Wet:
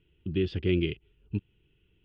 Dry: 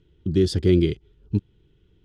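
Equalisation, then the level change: four-pole ladder low-pass 2.9 kHz, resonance 75%; +3.5 dB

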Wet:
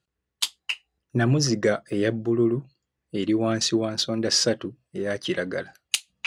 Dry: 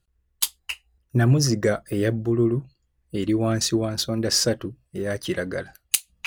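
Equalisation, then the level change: dynamic bell 3.2 kHz, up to +4 dB, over -41 dBFS, Q 1.5; band-pass 150–6900 Hz; 0.0 dB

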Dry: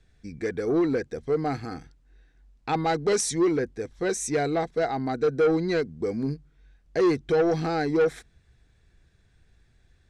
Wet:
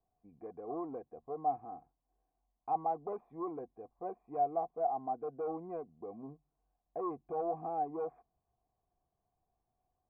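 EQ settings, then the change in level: cascade formant filter a; distance through air 400 m; peaking EQ 280 Hz +8 dB 2.2 oct; 0.0 dB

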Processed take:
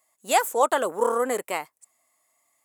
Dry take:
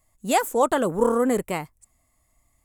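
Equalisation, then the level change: high-pass 530 Hz 12 dB/octave; +1.5 dB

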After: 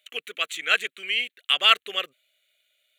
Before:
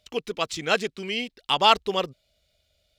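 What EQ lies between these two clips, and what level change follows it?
high-pass 1 kHz 12 dB/octave; static phaser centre 2.2 kHz, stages 4; +6.5 dB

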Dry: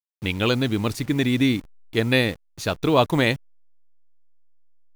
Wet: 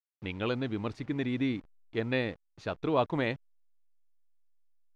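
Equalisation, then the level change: tape spacing loss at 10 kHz 29 dB; bass shelf 290 Hz -7 dB; -5.5 dB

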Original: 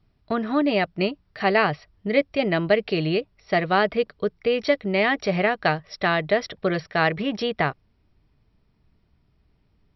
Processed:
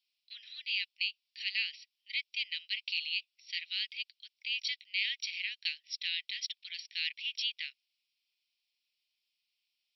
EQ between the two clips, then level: steep high-pass 2.5 kHz 48 dB/octave; 0.0 dB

